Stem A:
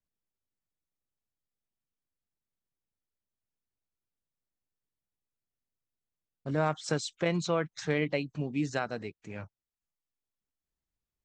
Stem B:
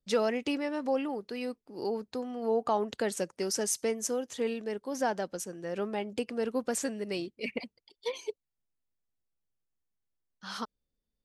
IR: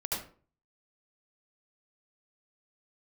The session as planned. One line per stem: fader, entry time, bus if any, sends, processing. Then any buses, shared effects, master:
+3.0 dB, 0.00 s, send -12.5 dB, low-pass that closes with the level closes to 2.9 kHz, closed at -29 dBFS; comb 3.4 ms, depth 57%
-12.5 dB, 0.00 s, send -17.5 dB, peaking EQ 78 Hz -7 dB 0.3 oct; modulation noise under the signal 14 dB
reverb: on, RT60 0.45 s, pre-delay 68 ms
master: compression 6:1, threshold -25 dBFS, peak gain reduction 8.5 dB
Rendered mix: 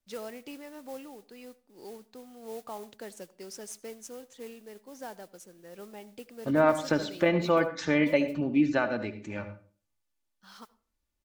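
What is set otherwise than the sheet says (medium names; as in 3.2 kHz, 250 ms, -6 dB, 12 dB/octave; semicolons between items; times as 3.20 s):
stem B: send -17.5 dB -> -23.5 dB; master: missing compression 6:1, threshold -25 dBFS, peak gain reduction 8.5 dB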